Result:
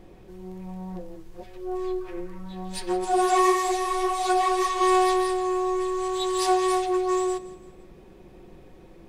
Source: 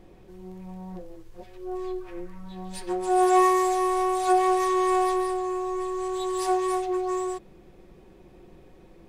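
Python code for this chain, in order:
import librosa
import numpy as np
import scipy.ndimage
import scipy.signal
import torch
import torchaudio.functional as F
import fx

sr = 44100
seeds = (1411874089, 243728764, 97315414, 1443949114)

p1 = fx.dynamic_eq(x, sr, hz=3900.0, q=0.85, threshold_db=-46.0, ratio=4.0, max_db=7)
p2 = p1 + fx.echo_feedback(p1, sr, ms=168, feedback_pct=41, wet_db=-17.0, dry=0)
p3 = fx.ensemble(p2, sr, at=(3.04, 4.81), fade=0.02)
y = p3 * 10.0 ** (2.5 / 20.0)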